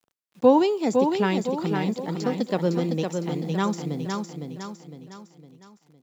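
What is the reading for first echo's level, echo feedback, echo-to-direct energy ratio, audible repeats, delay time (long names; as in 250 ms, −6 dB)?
−5.0 dB, 44%, −4.0 dB, 5, 508 ms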